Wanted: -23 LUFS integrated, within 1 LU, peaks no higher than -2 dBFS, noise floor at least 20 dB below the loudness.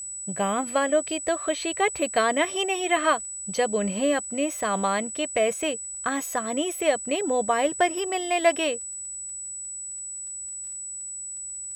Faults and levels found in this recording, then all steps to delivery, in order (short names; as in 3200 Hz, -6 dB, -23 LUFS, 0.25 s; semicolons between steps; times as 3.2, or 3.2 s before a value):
ticks 20/s; steady tone 7900 Hz; tone level -33 dBFS; loudness -26.0 LUFS; peak -7.5 dBFS; loudness target -23.0 LUFS
-> de-click; notch 7900 Hz, Q 30; gain +3 dB